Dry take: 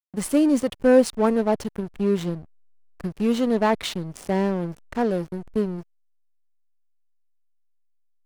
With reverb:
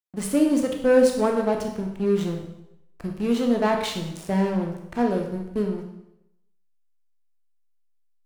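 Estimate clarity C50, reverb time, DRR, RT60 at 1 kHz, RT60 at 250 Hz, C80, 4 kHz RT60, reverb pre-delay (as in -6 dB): 5.5 dB, 0.80 s, 2.0 dB, 0.80 s, 0.80 s, 8.5 dB, 0.75 s, 6 ms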